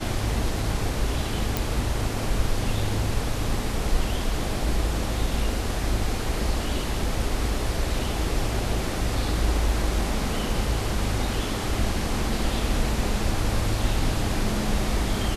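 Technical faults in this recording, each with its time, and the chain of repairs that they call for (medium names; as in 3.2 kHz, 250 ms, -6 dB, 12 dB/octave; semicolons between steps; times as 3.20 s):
1.57 s: pop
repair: de-click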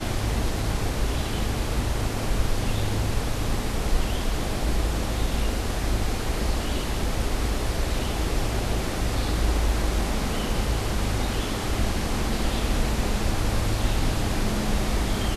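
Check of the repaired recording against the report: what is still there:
nothing left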